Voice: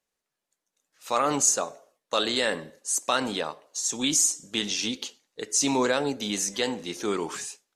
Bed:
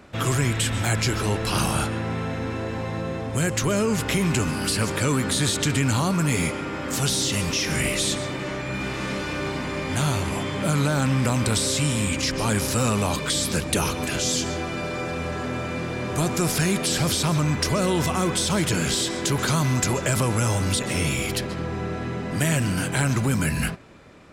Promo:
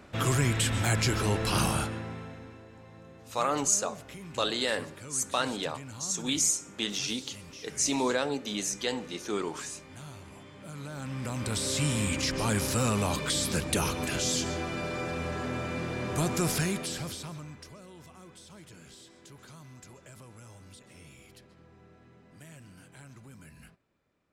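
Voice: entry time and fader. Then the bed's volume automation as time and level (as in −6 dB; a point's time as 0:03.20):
2.25 s, −4.0 dB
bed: 0:01.67 −3.5 dB
0:02.67 −22 dB
0:10.63 −22 dB
0:11.82 −5 dB
0:16.53 −5 dB
0:17.83 −28 dB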